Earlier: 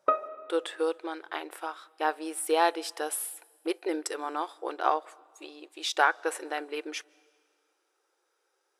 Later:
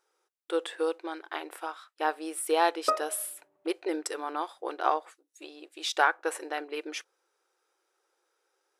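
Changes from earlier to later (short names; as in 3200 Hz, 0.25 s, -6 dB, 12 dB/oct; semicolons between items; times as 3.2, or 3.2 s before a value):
background: entry +2.80 s; reverb: off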